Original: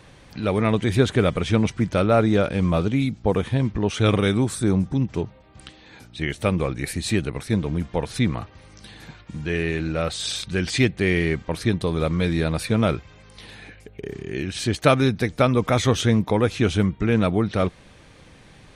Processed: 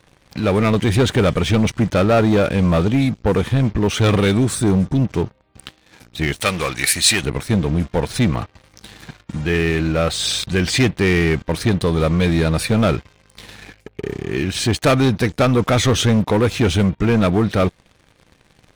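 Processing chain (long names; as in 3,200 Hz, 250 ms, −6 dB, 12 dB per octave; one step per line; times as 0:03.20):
leveller curve on the samples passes 3
0:06.40–0:07.24: tilt shelving filter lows −9.5 dB, about 840 Hz
level −4 dB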